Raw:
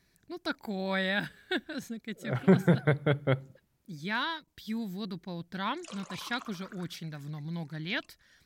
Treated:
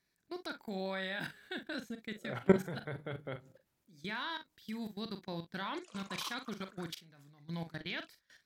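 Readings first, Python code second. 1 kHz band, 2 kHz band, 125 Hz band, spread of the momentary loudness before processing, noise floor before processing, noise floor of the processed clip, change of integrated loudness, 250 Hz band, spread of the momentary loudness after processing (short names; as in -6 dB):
-6.5 dB, -7.5 dB, -11.5 dB, 14 LU, -71 dBFS, -81 dBFS, -7.0 dB, -7.5 dB, 10 LU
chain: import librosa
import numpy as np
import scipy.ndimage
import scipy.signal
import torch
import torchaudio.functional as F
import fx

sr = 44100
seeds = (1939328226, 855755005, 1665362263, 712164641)

p1 = fx.low_shelf(x, sr, hz=170.0, db=-11.0)
p2 = fx.level_steps(p1, sr, step_db=21)
p3 = p2 + fx.echo_multitap(p2, sr, ms=(42, 61), db=(-9.5, -19.5), dry=0)
y = F.gain(torch.from_numpy(p3), 2.5).numpy()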